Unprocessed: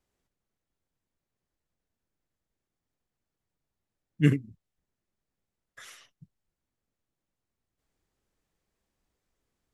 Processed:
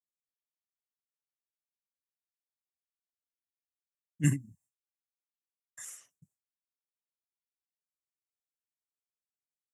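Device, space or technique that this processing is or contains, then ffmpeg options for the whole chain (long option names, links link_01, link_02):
budget condenser microphone: -filter_complex "[0:a]highpass=99,highshelf=frequency=5600:width_type=q:width=3:gain=12,agate=range=-33dB:threshold=-58dB:ratio=3:detection=peak,asettb=1/sr,asplit=3[link_01][link_02][link_03];[link_01]atrim=end=4.244[link_04];[link_02]atrim=start=4.24:end=5.85,asetpts=PTS-STARTPTS,afade=type=in:duration=0.004:curve=qsin,afade=type=out:start_time=1.606:duration=0.004:curve=qsin,aecho=1:1:1.1:0.99,atrim=end_sample=71001[link_05];[link_03]atrim=start=5.846[link_06];[link_04][link_05]acrossfade=duration=0.004:curve1=hsin:curve2=qsin[link_07];[link_07][link_06]acrossfade=duration=0.004:curve1=qsin:curve2=hsin,volume=-7.5dB"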